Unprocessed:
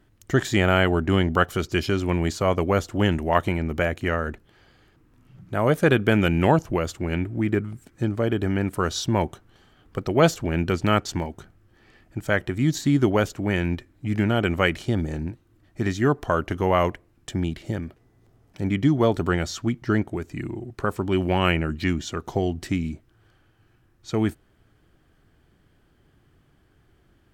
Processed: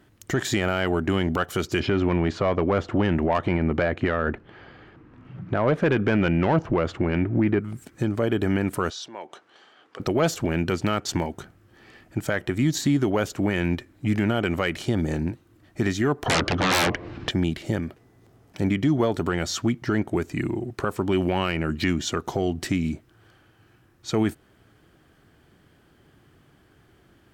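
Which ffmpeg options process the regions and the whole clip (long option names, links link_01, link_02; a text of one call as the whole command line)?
ffmpeg -i in.wav -filter_complex "[0:a]asettb=1/sr,asplit=3[link_01][link_02][link_03];[link_01]atrim=end=1.804[link_04];[link_02]atrim=start=1.8:end=7.6,asetpts=PTS-STARTPTS,afade=type=in:duration=0.004:curve=qsin,afade=type=out:start_time=5.796:duration=0.004:curve=qsin,lowpass=2400,acontrast=47[link_05];[link_03]atrim=start=7.596[link_06];[link_04][link_05]acrossfade=duration=0.004:curve1=hsin:curve2=qsin[link_07];[link_07][link_06]acrossfade=duration=0.004:curve1=qsin:curve2=hsin,asettb=1/sr,asplit=3[link_08][link_09][link_10];[link_08]atrim=end=8.904[link_11];[link_09]atrim=start=8.9:end=10,asetpts=PTS-STARTPTS,afade=type=in:duration=0.004:curve=qsin,afade=type=out:start_time=1.096:duration=0.004:curve=qsin,acompressor=threshold=-37dB:ratio=4:attack=3.2:release=140:knee=1:detection=peak,highpass=460,lowpass=5800[link_12];[link_10]atrim=start=9.996[link_13];[link_11][link_12]acrossfade=duration=0.004:curve1=hsin:curve2=qsin[link_14];[link_14][link_13]acrossfade=duration=0.004:curve1=qsin:curve2=hsin,asettb=1/sr,asplit=3[link_15][link_16][link_17];[link_15]atrim=end=16.264[link_18];[link_16]atrim=start=16.26:end=17.31,asetpts=PTS-STARTPTS,afade=type=in:duration=0.004:curve=qsin,afade=type=out:start_time=1.046:duration=0.004:curve=qsin,lowpass=frequency=4500:width=0.5412,lowpass=frequency=4500:width=1.3066,aeval=exprs='0.473*sin(PI/2*8.91*val(0)/0.473)':channel_layout=same,acompressor=threshold=-34dB:ratio=2.5:attack=3.2:release=140:knee=1:detection=peak[link_19];[link_17]atrim=start=17.306[link_20];[link_18][link_19]acrossfade=duration=0.004:curve1=hsin:curve2=qsin[link_21];[link_21][link_20]acrossfade=duration=0.004:curve1=qsin:curve2=hsin,highpass=frequency=120:poles=1,acontrast=47,alimiter=limit=-13dB:level=0:latency=1:release=185" out.wav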